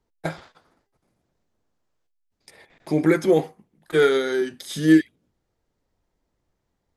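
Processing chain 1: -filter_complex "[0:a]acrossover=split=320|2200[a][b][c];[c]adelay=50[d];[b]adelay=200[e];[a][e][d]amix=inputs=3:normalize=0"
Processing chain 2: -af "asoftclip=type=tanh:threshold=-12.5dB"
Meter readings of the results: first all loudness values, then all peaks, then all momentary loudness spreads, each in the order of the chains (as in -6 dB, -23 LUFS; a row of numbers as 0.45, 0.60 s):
-24.0, -23.5 LUFS; -8.5, -12.5 dBFS; 15, 15 LU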